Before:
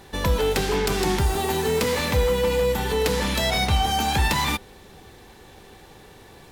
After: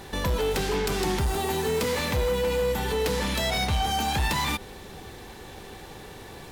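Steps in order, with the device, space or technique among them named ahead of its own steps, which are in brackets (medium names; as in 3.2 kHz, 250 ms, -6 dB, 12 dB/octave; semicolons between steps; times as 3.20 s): clipper into limiter (hard clipper -17.5 dBFS, distortion -16 dB; peak limiter -25 dBFS, peak gain reduction 7.5 dB); trim +4.5 dB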